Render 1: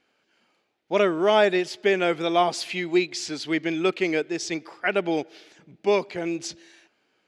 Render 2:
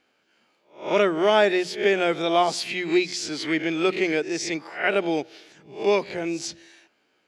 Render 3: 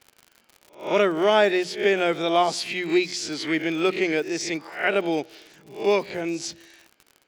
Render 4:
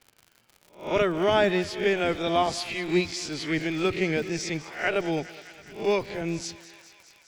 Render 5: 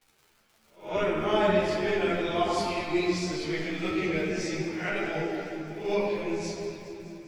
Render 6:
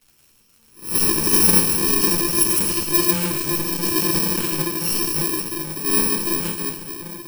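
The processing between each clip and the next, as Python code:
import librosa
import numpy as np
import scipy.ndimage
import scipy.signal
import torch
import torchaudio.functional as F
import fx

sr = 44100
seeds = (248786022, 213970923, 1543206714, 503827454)

y1 = fx.spec_swells(x, sr, rise_s=0.37)
y1 = fx.hum_notches(y1, sr, base_hz=60, count=3)
y2 = fx.dmg_crackle(y1, sr, seeds[0], per_s=79.0, level_db=-35.0)
y3 = fx.octave_divider(y2, sr, octaves=1, level_db=-1.0)
y3 = fx.echo_thinned(y3, sr, ms=206, feedback_pct=81, hz=660.0, wet_db=-16.0)
y3 = y3 * librosa.db_to_amplitude(-3.5)
y4 = fx.room_shoebox(y3, sr, seeds[1], volume_m3=130.0, walls='hard', distance_m=0.58)
y4 = fx.ensemble(y4, sr)
y4 = y4 * librosa.db_to_amplitude(-4.0)
y5 = fx.bit_reversed(y4, sr, seeds[2], block=64)
y5 = y5 * librosa.db_to_amplitude(8.5)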